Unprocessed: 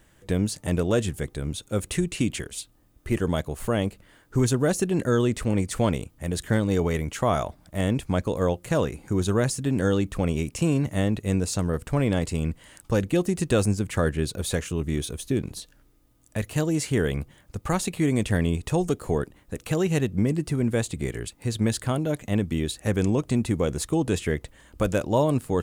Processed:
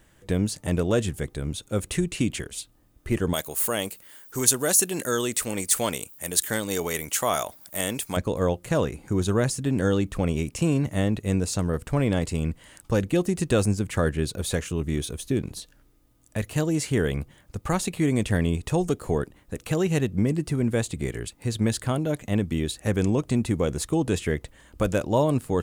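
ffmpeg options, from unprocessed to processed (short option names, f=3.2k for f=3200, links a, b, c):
-filter_complex "[0:a]asettb=1/sr,asplit=3[a][b][c];[a]atrim=end=3.334[d];[b]atrim=start=3.33:end=8.17,asetpts=PTS-STARTPTS,afade=t=in:d=0.004:c=qsin,afade=t=out:st=4.836:d=0.004:c=qsin,aemphasis=mode=production:type=riaa[e];[c]atrim=start=8.166[f];[d][e]acrossfade=d=0.004:c1=hsin:c2=qsin[g];[g][f]acrossfade=d=0.004:c1=qsin:c2=hsin"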